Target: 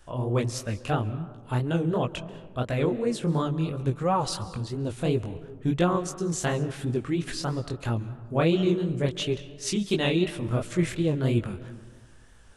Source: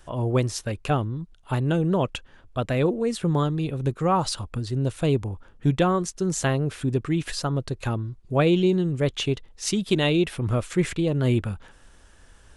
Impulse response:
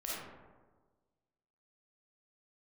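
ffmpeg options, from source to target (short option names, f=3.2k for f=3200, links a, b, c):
-filter_complex "[0:a]asplit=2[a][b];[1:a]atrim=start_sample=2205,adelay=137[c];[b][c]afir=irnorm=-1:irlink=0,volume=-17.5dB[d];[a][d]amix=inputs=2:normalize=0,flanger=delay=17:depth=7.7:speed=2.9"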